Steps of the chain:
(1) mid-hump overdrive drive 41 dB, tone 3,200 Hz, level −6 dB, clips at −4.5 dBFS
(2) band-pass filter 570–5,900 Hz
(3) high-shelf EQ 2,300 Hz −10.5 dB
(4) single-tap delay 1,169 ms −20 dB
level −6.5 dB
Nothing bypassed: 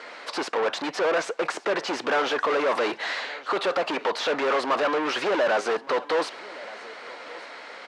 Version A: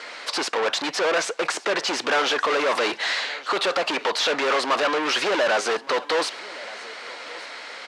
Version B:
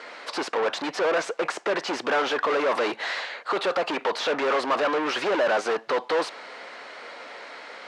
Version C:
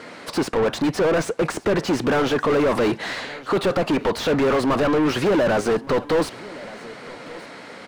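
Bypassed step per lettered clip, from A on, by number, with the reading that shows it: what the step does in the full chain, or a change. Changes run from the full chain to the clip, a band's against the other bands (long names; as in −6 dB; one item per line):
3, 8 kHz band +7.5 dB
4, change in momentary loudness spread +1 LU
2, 250 Hz band +11.0 dB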